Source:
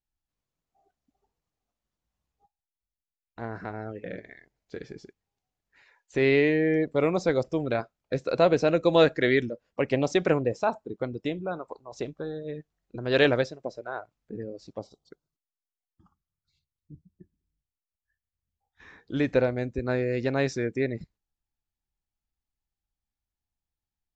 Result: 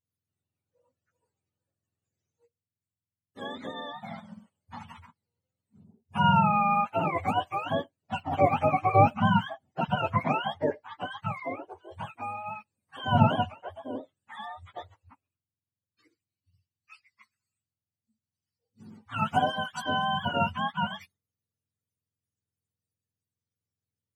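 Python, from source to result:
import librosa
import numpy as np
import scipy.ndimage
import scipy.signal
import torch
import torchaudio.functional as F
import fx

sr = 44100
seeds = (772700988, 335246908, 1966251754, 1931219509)

y = fx.octave_mirror(x, sr, pivot_hz=620.0)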